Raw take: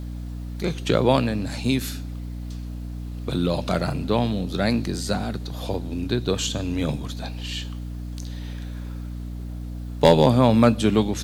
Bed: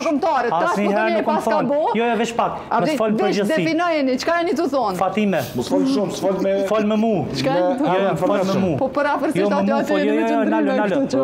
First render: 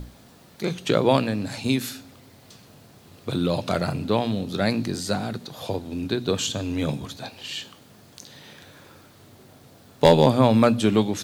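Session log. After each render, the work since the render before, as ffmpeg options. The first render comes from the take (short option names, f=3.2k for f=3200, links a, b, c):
-af "bandreject=f=60:t=h:w=6,bandreject=f=120:t=h:w=6,bandreject=f=180:t=h:w=6,bandreject=f=240:t=h:w=6,bandreject=f=300:t=h:w=6"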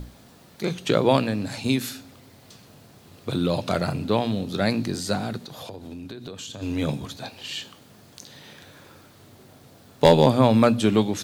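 -filter_complex "[0:a]asplit=3[a][b][c];[a]afade=t=out:st=5.41:d=0.02[d];[b]acompressor=threshold=-34dB:ratio=6:attack=3.2:release=140:knee=1:detection=peak,afade=t=in:st=5.41:d=0.02,afade=t=out:st=6.61:d=0.02[e];[c]afade=t=in:st=6.61:d=0.02[f];[d][e][f]amix=inputs=3:normalize=0"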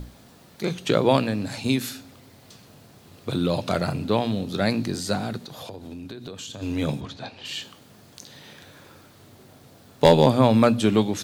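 -filter_complex "[0:a]asplit=3[a][b][c];[a]afade=t=out:st=7:d=0.02[d];[b]lowpass=4.5k,afade=t=in:st=7:d=0.02,afade=t=out:st=7.44:d=0.02[e];[c]afade=t=in:st=7.44:d=0.02[f];[d][e][f]amix=inputs=3:normalize=0"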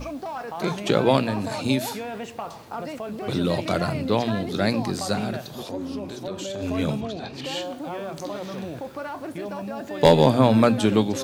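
-filter_complex "[1:a]volume=-14.5dB[a];[0:a][a]amix=inputs=2:normalize=0"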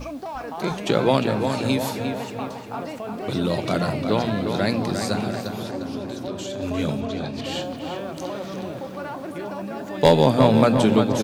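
-filter_complex "[0:a]asplit=2[a][b];[b]adelay=353,lowpass=f=3.5k:p=1,volume=-6dB,asplit=2[c][d];[d]adelay=353,lowpass=f=3.5k:p=1,volume=0.54,asplit=2[e][f];[f]adelay=353,lowpass=f=3.5k:p=1,volume=0.54,asplit=2[g][h];[h]adelay=353,lowpass=f=3.5k:p=1,volume=0.54,asplit=2[i][j];[j]adelay=353,lowpass=f=3.5k:p=1,volume=0.54,asplit=2[k][l];[l]adelay=353,lowpass=f=3.5k:p=1,volume=0.54,asplit=2[m][n];[n]adelay=353,lowpass=f=3.5k:p=1,volume=0.54[o];[a][c][e][g][i][k][m][o]amix=inputs=8:normalize=0"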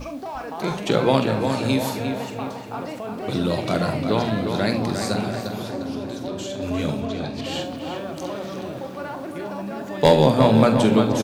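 -af "aecho=1:1:45|71:0.316|0.188"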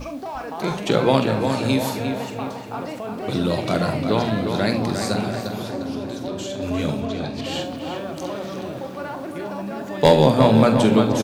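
-af "volume=1dB,alimiter=limit=-2dB:level=0:latency=1"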